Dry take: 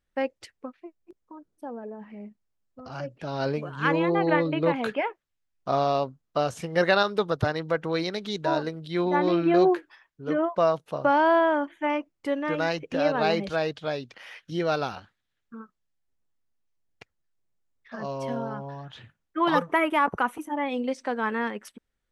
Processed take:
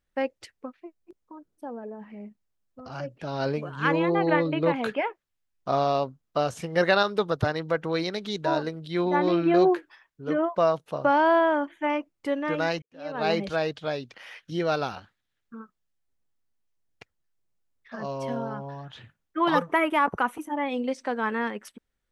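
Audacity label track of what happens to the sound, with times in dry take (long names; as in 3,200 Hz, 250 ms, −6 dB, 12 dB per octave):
12.820000	13.310000	fade in quadratic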